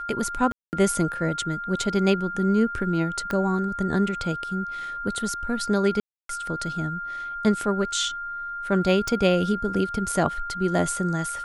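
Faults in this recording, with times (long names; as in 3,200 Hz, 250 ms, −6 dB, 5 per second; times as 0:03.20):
whistle 1,400 Hz −30 dBFS
0:00.52–0:00.73: drop-out 209 ms
0:03.31: click −15 dBFS
0:06.00–0:06.29: drop-out 293 ms
0:09.08: click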